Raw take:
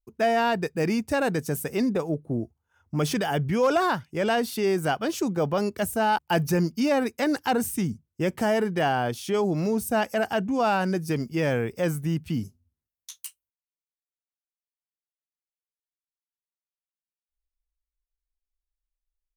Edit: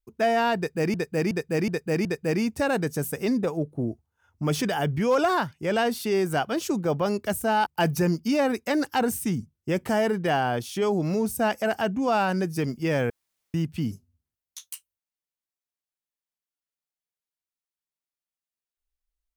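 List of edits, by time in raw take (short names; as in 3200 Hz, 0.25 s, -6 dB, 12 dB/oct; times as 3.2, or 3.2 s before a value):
0.57–0.94 loop, 5 plays
11.62–12.06 room tone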